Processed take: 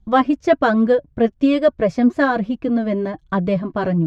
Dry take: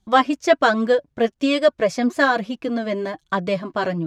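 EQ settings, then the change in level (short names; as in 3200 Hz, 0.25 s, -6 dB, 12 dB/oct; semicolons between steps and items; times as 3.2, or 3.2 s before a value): RIAA curve playback; -1.0 dB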